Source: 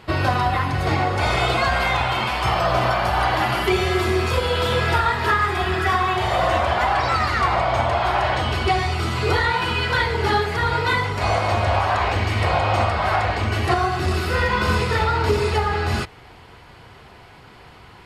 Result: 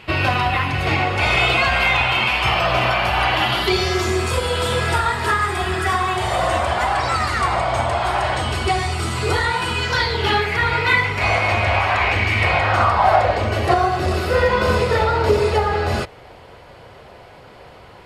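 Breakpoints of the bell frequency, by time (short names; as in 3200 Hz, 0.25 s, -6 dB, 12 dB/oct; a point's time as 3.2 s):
bell +11.5 dB 0.64 oct
3.32 s 2600 Hz
4.28 s 8600 Hz
9.74 s 8600 Hz
10.41 s 2300 Hz
12.56 s 2300 Hz
13.23 s 560 Hz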